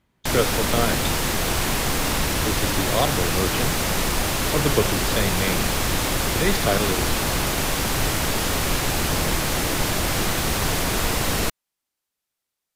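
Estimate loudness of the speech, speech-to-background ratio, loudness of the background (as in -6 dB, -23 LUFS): -26.5 LUFS, -4.0 dB, -22.5 LUFS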